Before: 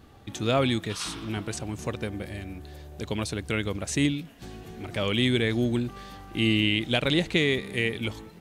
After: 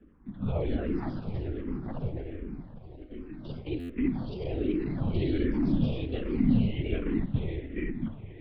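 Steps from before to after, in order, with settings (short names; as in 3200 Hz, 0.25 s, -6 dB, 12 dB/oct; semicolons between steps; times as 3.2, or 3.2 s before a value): bin magnitudes rounded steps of 15 dB; LPF 1600 Hz 12 dB/oct; bell 210 Hz +14 dB 0.68 oct; diffused feedback echo 0.456 s, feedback 53%, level -14 dB; reverb RT60 0.35 s, pre-delay 42 ms, DRR 10 dB; LPC vocoder at 8 kHz whisper; 2.96–3.98 resonator 260 Hz, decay 0.45 s, harmonics all, mix 80%; echoes that change speed 0.317 s, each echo +3 st, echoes 2; stuck buffer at 3.79, samples 512, times 8; endless phaser -1.3 Hz; gain -7.5 dB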